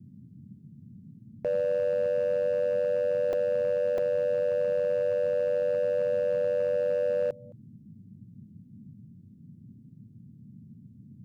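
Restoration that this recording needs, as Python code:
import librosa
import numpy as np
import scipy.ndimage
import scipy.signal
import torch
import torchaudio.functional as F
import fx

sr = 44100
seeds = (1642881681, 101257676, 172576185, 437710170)

y = fx.fix_declip(x, sr, threshold_db=-22.0)
y = fx.fix_interpolate(y, sr, at_s=(3.33, 3.98), length_ms=3.1)
y = fx.noise_reduce(y, sr, print_start_s=9.72, print_end_s=10.22, reduce_db=25.0)
y = fx.fix_echo_inverse(y, sr, delay_ms=215, level_db=-23.5)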